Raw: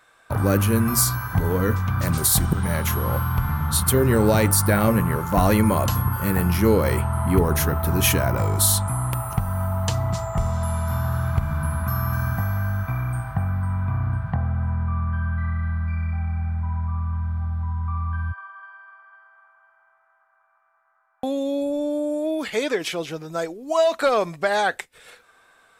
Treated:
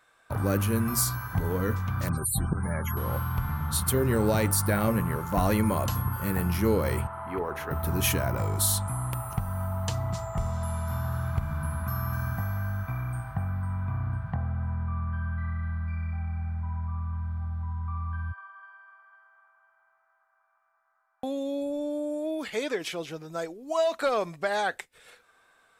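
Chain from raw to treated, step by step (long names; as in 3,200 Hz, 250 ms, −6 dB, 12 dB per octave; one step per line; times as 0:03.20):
0:02.09–0:02.97: spectral peaks only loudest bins 64
0:07.07–0:07.71: three-way crossover with the lows and the highs turned down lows −16 dB, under 360 Hz, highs −17 dB, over 2,900 Hz
level −6.5 dB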